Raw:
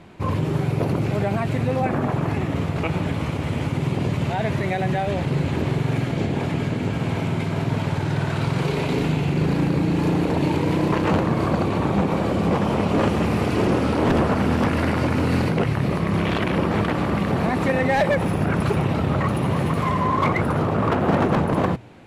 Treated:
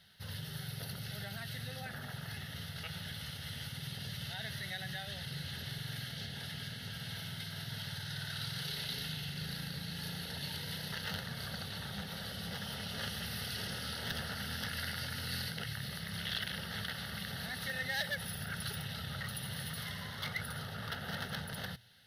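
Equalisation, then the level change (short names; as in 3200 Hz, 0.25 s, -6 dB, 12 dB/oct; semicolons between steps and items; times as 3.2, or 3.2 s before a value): tilt +4 dB/oct; passive tone stack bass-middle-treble 6-0-2; fixed phaser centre 1600 Hz, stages 8; +8.0 dB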